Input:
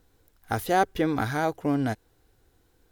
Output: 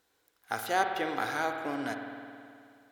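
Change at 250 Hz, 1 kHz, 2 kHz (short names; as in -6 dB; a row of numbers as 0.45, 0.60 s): -10.0, -3.5, -0.5 dB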